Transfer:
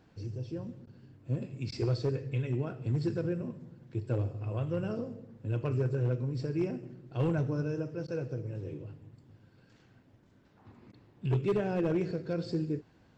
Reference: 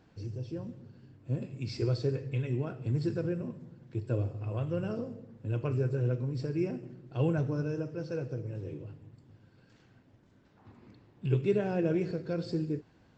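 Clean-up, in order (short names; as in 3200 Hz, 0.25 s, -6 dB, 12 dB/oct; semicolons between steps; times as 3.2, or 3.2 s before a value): clip repair -23 dBFS; interpolate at 0.86/1.71/8.07/10.92, 10 ms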